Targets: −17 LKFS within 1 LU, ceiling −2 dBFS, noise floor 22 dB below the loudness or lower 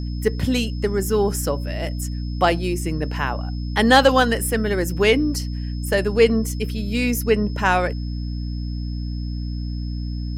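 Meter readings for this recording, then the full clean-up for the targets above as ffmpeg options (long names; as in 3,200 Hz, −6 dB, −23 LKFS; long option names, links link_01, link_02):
mains hum 60 Hz; hum harmonics up to 300 Hz; level of the hum −24 dBFS; interfering tone 5,200 Hz; level of the tone −44 dBFS; integrated loudness −21.5 LKFS; sample peak −2.5 dBFS; target loudness −17.0 LKFS
→ -af "bandreject=frequency=60:width_type=h:width=6,bandreject=frequency=120:width_type=h:width=6,bandreject=frequency=180:width_type=h:width=6,bandreject=frequency=240:width_type=h:width=6,bandreject=frequency=300:width_type=h:width=6"
-af "bandreject=frequency=5200:width=30"
-af "volume=4.5dB,alimiter=limit=-2dB:level=0:latency=1"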